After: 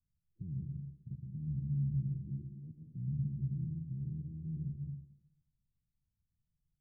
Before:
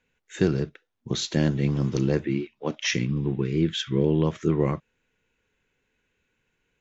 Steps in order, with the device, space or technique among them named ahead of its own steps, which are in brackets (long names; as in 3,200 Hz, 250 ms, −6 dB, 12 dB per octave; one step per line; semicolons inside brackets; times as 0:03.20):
club heard from the street (brickwall limiter −21 dBFS, peak gain reduction 11.5 dB; low-pass filter 150 Hz 24 dB per octave; convolution reverb RT60 1.0 s, pre-delay 106 ms, DRR 2 dB)
level −4.5 dB